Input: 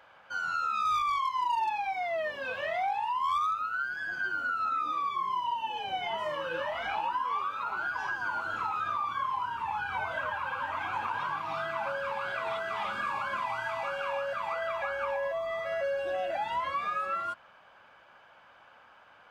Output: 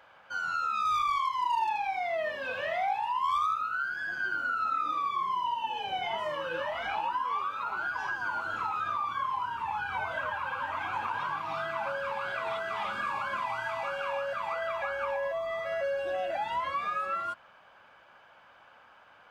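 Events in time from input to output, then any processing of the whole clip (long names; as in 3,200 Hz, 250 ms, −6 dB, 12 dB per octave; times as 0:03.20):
0:00.92–0:06.20: single-tap delay 79 ms −8.5 dB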